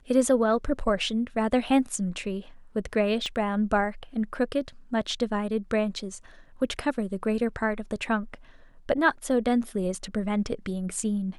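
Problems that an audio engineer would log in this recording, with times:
3.26 pop -22 dBFS

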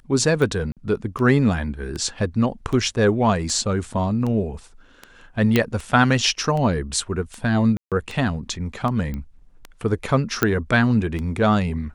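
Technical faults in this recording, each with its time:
tick 78 rpm
0.72–0.77 gap 47 ms
5.56 pop -4 dBFS
7.77–7.92 gap 0.147 s
9.14 pop -18 dBFS
10.43 pop -3 dBFS

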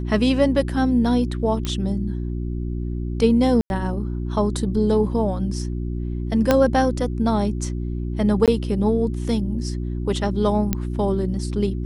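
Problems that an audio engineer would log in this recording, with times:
hum 60 Hz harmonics 6 -26 dBFS
1.65 pop -12 dBFS
3.61–3.7 gap 91 ms
6.51 pop -3 dBFS
8.46–8.48 gap 17 ms
10.73 pop -7 dBFS

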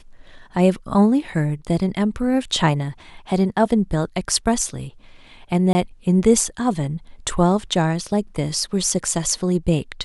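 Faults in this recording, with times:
5.73–5.75 gap 20 ms

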